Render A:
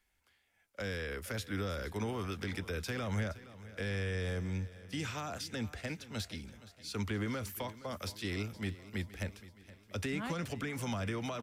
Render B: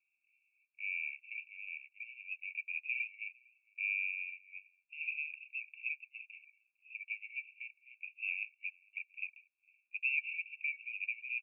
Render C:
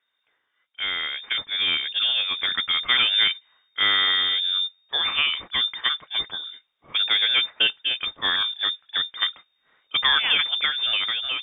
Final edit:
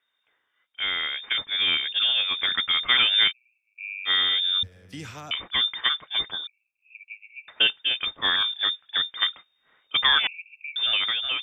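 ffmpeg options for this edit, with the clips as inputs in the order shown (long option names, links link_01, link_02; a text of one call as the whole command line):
ffmpeg -i take0.wav -i take1.wav -i take2.wav -filter_complex "[1:a]asplit=3[link_01][link_02][link_03];[2:a]asplit=5[link_04][link_05][link_06][link_07][link_08];[link_04]atrim=end=3.33[link_09];[link_01]atrim=start=3.27:end=4.11[link_10];[link_05]atrim=start=4.05:end=4.632[link_11];[0:a]atrim=start=4.628:end=5.312[link_12];[link_06]atrim=start=5.308:end=6.472[link_13];[link_02]atrim=start=6.468:end=7.482[link_14];[link_07]atrim=start=7.478:end=10.272[link_15];[link_03]atrim=start=10.268:end=10.762[link_16];[link_08]atrim=start=10.758[link_17];[link_09][link_10]acrossfade=duration=0.06:curve1=tri:curve2=tri[link_18];[link_18][link_11]acrossfade=duration=0.06:curve1=tri:curve2=tri[link_19];[link_19][link_12]acrossfade=duration=0.004:curve1=hsin:curve2=hsin[link_20];[link_20][link_13]acrossfade=duration=0.004:curve1=hsin:curve2=hsin[link_21];[link_21][link_14]acrossfade=duration=0.004:curve1=hsin:curve2=hsin[link_22];[link_22][link_15]acrossfade=duration=0.004:curve1=hsin:curve2=hsin[link_23];[link_23][link_16]acrossfade=duration=0.004:curve1=hsin:curve2=hsin[link_24];[link_24][link_17]acrossfade=duration=0.004:curve1=hsin:curve2=hsin" out.wav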